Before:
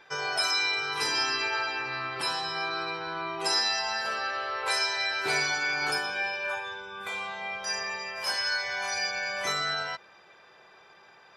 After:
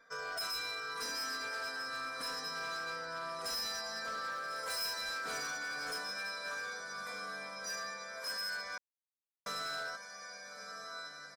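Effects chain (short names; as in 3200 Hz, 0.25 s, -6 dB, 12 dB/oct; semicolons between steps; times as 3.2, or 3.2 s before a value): fixed phaser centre 560 Hz, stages 8; comb 4.3 ms, depth 49%; diffused feedback echo 1.331 s, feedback 44%, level -8 dB; hard clip -29.5 dBFS, distortion -12 dB; 4.31–5.01 high shelf 11000 Hz +8 dB; 8.78–9.46 mute; gain -6 dB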